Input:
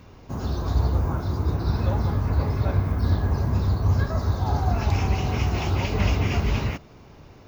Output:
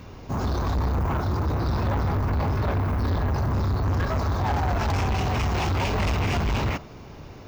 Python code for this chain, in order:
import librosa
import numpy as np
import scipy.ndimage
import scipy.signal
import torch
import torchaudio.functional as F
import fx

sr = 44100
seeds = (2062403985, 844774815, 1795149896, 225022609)

y = fx.dynamic_eq(x, sr, hz=1000.0, q=1.0, threshold_db=-44.0, ratio=4.0, max_db=5)
y = 10.0 ** (-26.5 / 20.0) * np.tanh(y / 10.0 ** (-26.5 / 20.0))
y = y * librosa.db_to_amplitude(5.5)